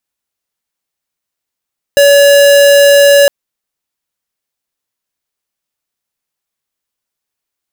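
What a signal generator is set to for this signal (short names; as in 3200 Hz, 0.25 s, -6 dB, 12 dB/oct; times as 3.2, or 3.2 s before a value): tone square 567 Hz -5 dBFS 1.31 s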